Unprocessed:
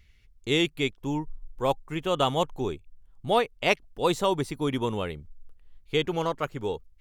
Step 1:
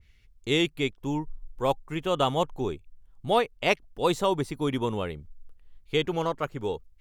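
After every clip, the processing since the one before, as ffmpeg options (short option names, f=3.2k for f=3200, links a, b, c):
-af "adynamicequalizer=threshold=0.0112:dfrequency=1800:dqfactor=0.7:tfrequency=1800:tqfactor=0.7:attack=5:release=100:ratio=0.375:range=2:mode=cutabove:tftype=highshelf"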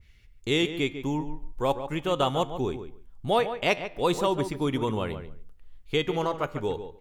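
-filter_complex "[0:a]asplit=2[a][b];[b]acompressor=threshold=-31dB:ratio=6,volume=-1dB[c];[a][c]amix=inputs=2:normalize=0,flanger=delay=8.1:depth=3.9:regen=89:speed=0.38:shape=triangular,asplit=2[d][e];[e]adelay=144,lowpass=f=2.4k:p=1,volume=-10dB,asplit=2[f][g];[g]adelay=144,lowpass=f=2.4k:p=1,volume=0.15[h];[d][f][h]amix=inputs=3:normalize=0,volume=2dB"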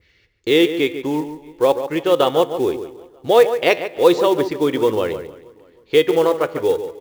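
-filter_complex "[0:a]highpass=120,equalizer=f=130:t=q:w=4:g=-6,equalizer=f=200:t=q:w=4:g=-9,equalizer=f=340:t=q:w=4:g=6,equalizer=f=490:t=q:w=4:g=10,equalizer=f=1.8k:t=q:w=4:g=5,equalizer=f=4.3k:t=q:w=4:g=4,lowpass=f=6k:w=0.5412,lowpass=f=6k:w=1.3066,asplit=2[a][b];[b]adelay=314,lowpass=f=3.7k:p=1,volume=-22dB,asplit=2[c][d];[d]adelay=314,lowpass=f=3.7k:p=1,volume=0.43,asplit=2[e][f];[f]adelay=314,lowpass=f=3.7k:p=1,volume=0.43[g];[a][c][e][g]amix=inputs=4:normalize=0,acrusher=bits=6:mode=log:mix=0:aa=0.000001,volume=5.5dB"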